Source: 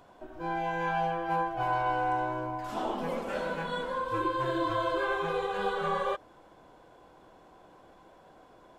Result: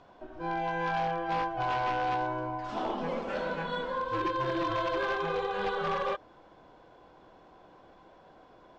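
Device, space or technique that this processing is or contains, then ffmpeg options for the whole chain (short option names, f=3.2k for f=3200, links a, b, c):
synthesiser wavefolder: -af "aeval=exprs='0.0631*(abs(mod(val(0)/0.0631+3,4)-2)-1)':c=same,lowpass=f=5.8k:w=0.5412,lowpass=f=5.8k:w=1.3066"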